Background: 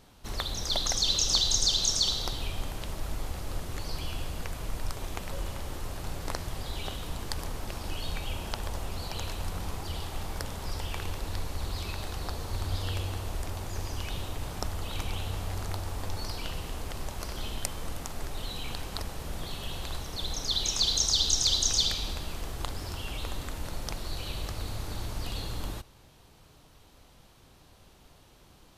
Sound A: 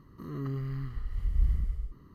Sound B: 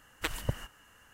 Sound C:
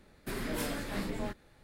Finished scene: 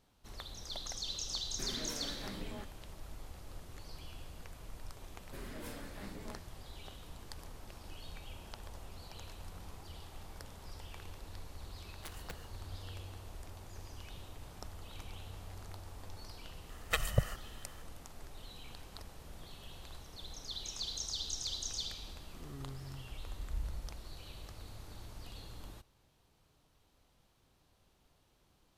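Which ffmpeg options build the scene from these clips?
-filter_complex "[3:a]asplit=2[s0][s1];[2:a]asplit=2[s2][s3];[0:a]volume=0.2[s4];[s0]alimiter=level_in=1.41:limit=0.0631:level=0:latency=1:release=129,volume=0.708[s5];[s2]aeval=exprs='(mod(15.8*val(0)+1,2)-1)/15.8':c=same[s6];[s3]aecho=1:1:1.6:0.84[s7];[s5]atrim=end=1.63,asetpts=PTS-STARTPTS,volume=0.447,afade=t=in:d=0.004:c=hsin,afade=t=out:st=1.626:d=0.004:c=hsin,adelay=1320[s8];[s1]atrim=end=1.63,asetpts=PTS-STARTPTS,volume=0.251,afade=t=in:d=0.004:c=hsin,afade=t=out:st=1.626:d=0.004:c=hsin,adelay=5060[s9];[s6]atrim=end=1.13,asetpts=PTS-STARTPTS,volume=0.224,afade=t=in:d=0.004:c=hsin,afade=t=out:st=1.126:d=0.004:c=hsin,adelay=11810[s10];[s7]atrim=end=1.13,asetpts=PTS-STARTPTS,volume=0.891,afade=t=in:d=0.004:c=hsin,afade=t=out:st=1.126:d=0.004:c=hsin,adelay=16690[s11];[1:a]atrim=end=2.14,asetpts=PTS-STARTPTS,volume=0.224,afade=t=in:d=0.004:c=hsin,afade=t=out:st=2.136:d=0.004:c=hsin,adelay=22150[s12];[s4][s8][s9][s10][s11][s12]amix=inputs=6:normalize=0"

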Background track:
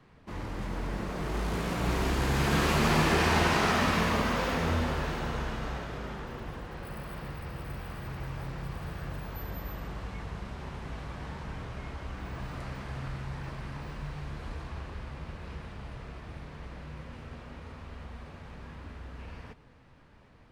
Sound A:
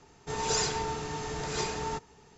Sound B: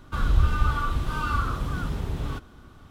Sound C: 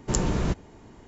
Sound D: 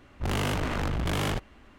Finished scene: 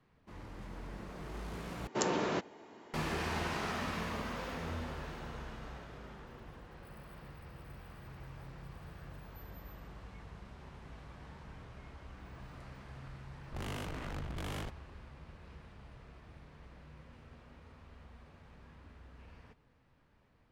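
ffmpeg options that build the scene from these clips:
-filter_complex "[0:a]volume=0.266[s0];[3:a]highpass=350,lowpass=4600[s1];[s0]asplit=2[s2][s3];[s2]atrim=end=1.874[s4];[s1]atrim=end=1.07,asetpts=PTS-STARTPTS,volume=0.944[s5];[s3]atrim=start=2.936[s6];[4:a]atrim=end=1.78,asetpts=PTS-STARTPTS,volume=0.224,afade=t=in:d=0.004:c=hsin,afade=t=out:st=1.776:d=0.004:c=hsin,adelay=13310[s7];[s4][s5]acrossfade=d=0.004:c1=hsin:c2=hsin[s8];[s8][s6]acrossfade=d=0.004:c1=hsin:c2=hsin[s9];[s9][s7]amix=inputs=2:normalize=0"

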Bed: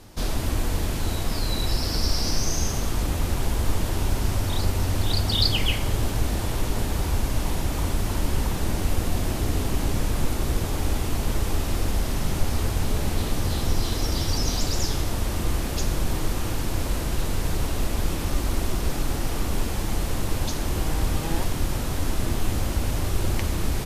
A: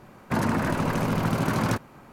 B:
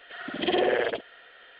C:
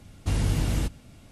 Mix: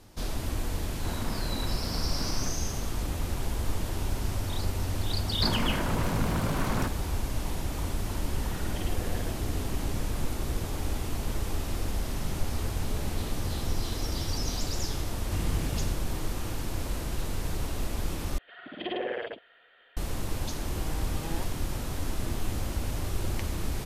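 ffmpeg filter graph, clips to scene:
-filter_complex "[1:a]asplit=2[s0][s1];[2:a]asplit=2[s2][s3];[0:a]volume=0.473[s4];[s0]asplit=2[s5][s6];[s6]adelay=39,volume=0.562[s7];[s5][s7]amix=inputs=2:normalize=0[s8];[s1]asoftclip=type=tanh:threshold=0.075[s9];[s2]acompressor=threshold=0.0316:ratio=6:attack=3.2:release=140:knee=1:detection=peak[s10];[3:a]aeval=exprs='sgn(val(0))*max(abs(val(0))-0.00501,0)':c=same[s11];[s4]asplit=2[s12][s13];[s12]atrim=end=18.384[s14];[s3]atrim=end=1.59,asetpts=PTS-STARTPTS,volume=0.376[s15];[s13]atrim=start=19.966[s16];[s8]atrim=end=2.12,asetpts=PTS-STARTPTS,volume=0.178,afade=t=in:d=0.004:c=hsin,afade=t=out:st=2.116:d=0.004:c=hsin,adelay=730[s17];[s9]atrim=end=2.12,asetpts=PTS-STARTPTS,volume=0.75,afade=t=in:d=0.004:c=hsin,afade=t=out:st=2.116:d=0.004:c=hsin,adelay=5110[s18];[s10]atrim=end=1.59,asetpts=PTS-STARTPTS,volume=0.355,afade=t=in:d=0.004:c=hsin,afade=t=out:st=1.586:d=0.004:c=hsin,adelay=367794S[s19];[s11]atrim=end=1.31,asetpts=PTS-STARTPTS,volume=0.447,afade=t=in:d=0.004:c=hsin,afade=t=out:st=1.306:d=0.004:c=hsin,adelay=15050[s20];[s14][s15]acrossfade=d=0.004:c1=hsin:c2=hsin[s21];[s21][s16]acrossfade=d=0.004:c1=hsin:c2=hsin[s22];[s22][s17][s18][s19][s20]amix=inputs=5:normalize=0"

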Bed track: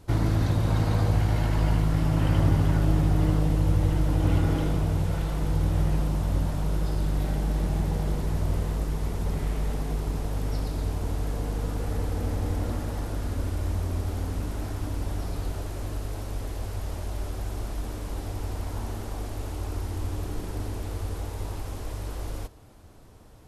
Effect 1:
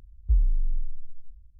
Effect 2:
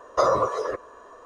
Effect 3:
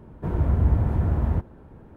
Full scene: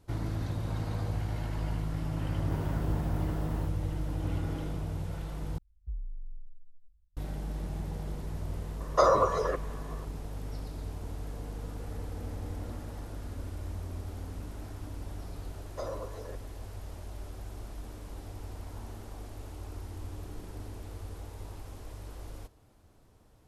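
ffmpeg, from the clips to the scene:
-filter_complex "[2:a]asplit=2[s0][s1];[0:a]volume=0.316[s2];[3:a]aemphasis=mode=production:type=bsi[s3];[s1]equalizer=f=1200:t=o:w=0.33:g=-14[s4];[s2]asplit=2[s5][s6];[s5]atrim=end=5.584[s7];[1:a]atrim=end=1.59,asetpts=PTS-STARTPTS,volume=0.15[s8];[s6]atrim=start=7.166[s9];[s3]atrim=end=1.96,asetpts=PTS-STARTPTS,volume=0.473,afade=t=in:d=0.004:c=hsin,afade=t=out:st=1.956:d=0.004:c=hsin,adelay=2270[s10];[s0]atrim=end=1.25,asetpts=PTS-STARTPTS,volume=0.794,afade=t=in:d=0.004:c=hsin,afade=t=out:st=1.246:d=0.004:c=hsin,adelay=8800[s11];[s4]atrim=end=1.25,asetpts=PTS-STARTPTS,volume=0.158,afade=t=in:d=0.004:c=hsin,afade=t=out:st=1.246:d=0.004:c=hsin,adelay=15600[s12];[s7][s8]acrossfade=d=0.004:c1=hsin:c2=hsin[s13];[s13][s9]acrossfade=d=0.004:c1=hsin:c2=hsin[s14];[s14][s10][s11][s12]amix=inputs=4:normalize=0"

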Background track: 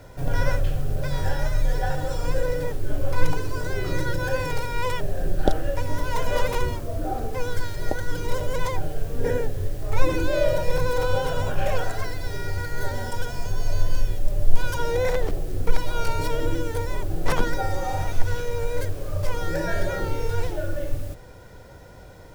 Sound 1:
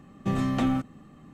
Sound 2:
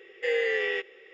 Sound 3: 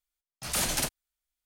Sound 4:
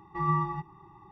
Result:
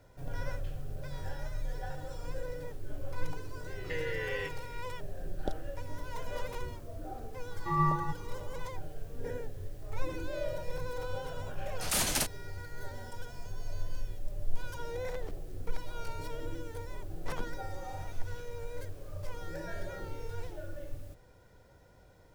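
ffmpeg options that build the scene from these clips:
-filter_complex "[0:a]volume=0.188[s0];[2:a]acompressor=threshold=0.0398:ratio=6:attack=3.2:release=140:knee=1:detection=peak,atrim=end=1.13,asetpts=PTS-STARTPTS,volume=0.562,afade=t=in:d=0.004:c=hsin,afade=t=out:st=1.126:d=0.004:c=hsin,adelay=3670[s1];[4:a]atrim=end=1.11,asetpts=PTS-STARTPTS,volume=0.891,afade=t=in:d=0.004:c=hsin,afade=t=out:st=1.106:d=0.004:c=hsin,adelay=7510[s2];[3:a]atrim=end=1.45,asetpts=PTS-STARTPTS,volume=0.841,afade=t=in:d=0.004:c=hsin,afade=t=out:st=1.446:d=0.004:c=hsin,adelay=501858S[s3];[s0][s1][s2][s3]amix=inputs=4:normalize=0"

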